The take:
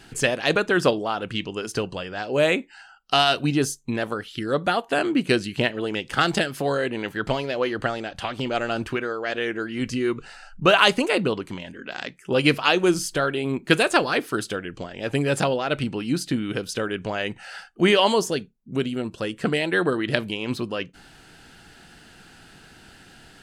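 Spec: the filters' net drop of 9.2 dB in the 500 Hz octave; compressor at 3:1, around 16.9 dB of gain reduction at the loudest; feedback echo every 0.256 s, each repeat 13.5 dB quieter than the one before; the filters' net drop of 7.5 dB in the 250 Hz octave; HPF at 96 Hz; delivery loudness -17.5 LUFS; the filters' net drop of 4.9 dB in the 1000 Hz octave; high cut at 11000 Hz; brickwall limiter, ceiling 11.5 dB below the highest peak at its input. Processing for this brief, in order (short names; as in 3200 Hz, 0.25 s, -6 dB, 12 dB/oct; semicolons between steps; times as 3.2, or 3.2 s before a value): HPF 96 Hz; LPF 11000 Hz; bell 250 Hz -6.5 dB; bell 500 Hz -9 dB; bell 1000 Hz -3.5 dB; compressor 3:1, threshold -40 dBFS; limiter -28.5 dBFS; feedback echo 0.256 s, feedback 21%, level -13.5 dB; gain +24 dB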